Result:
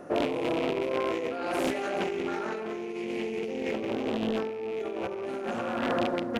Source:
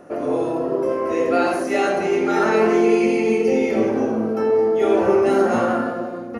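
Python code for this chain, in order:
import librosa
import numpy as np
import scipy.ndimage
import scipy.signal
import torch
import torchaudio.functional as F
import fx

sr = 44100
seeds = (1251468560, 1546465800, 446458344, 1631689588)

p1 = fx.rattle_buzz(x, sr, strikes_db=-32.0, level_db=-20.0)
p2 = fx.over_compress(p1, sr, threshold_db=-25.0, ratio=-1.0)
p3 = p2 + fx.echo_single(p2, sr, ms=165, db=-17.0, dry=0)
p4 = fx.doppler_dist(p3, sr, depth_ms=0.44)
y = F.gain(torch.from_numpy(p4), -6.0).numpy()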